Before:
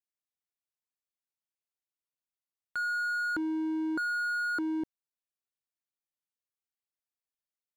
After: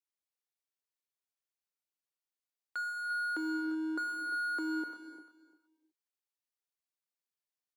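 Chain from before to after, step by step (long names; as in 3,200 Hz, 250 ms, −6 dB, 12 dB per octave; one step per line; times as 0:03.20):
high-pass filter 280 Hz 24 dB per octave
parametric band 4,800 Hz +2 dB
repeating echo 348 ms, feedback 20%, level −14 dB
reverb whose tail is shaped and stops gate 400 ms flat, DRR 4.5 dB
level −4 dB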